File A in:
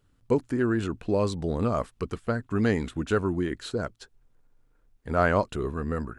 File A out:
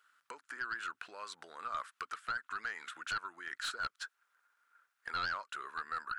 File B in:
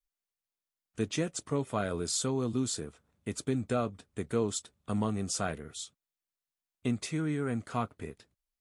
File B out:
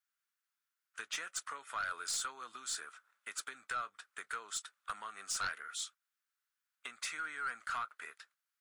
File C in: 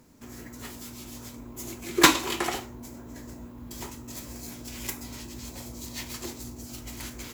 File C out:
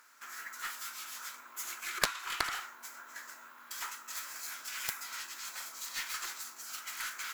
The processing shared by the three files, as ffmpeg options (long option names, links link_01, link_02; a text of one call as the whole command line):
ffmpeg -i in.wav -af "acompressor=threshold=-32dB:ratio=20,highpass=frequency=1400:width_type=q:width=4.1,aeval=exprs='0.158*(cos(1*acos(clip(val(0)/0.158,-1,1)))-cos(1*PI/2))+0.0141*(cos(2*acos(clip(val(0)/0.158,-1,1)))-cos(2*PI/2))+0.0708*(cos(3*acos(clip(val(0)/0.158,-1,1)))-cos(3*PI/2))+0.00158*(cos(4*acos(clip(val(0)/0.158,-1,1)))-cos(4*PI/2))':channel_layout=same,volume=10dB" out.wav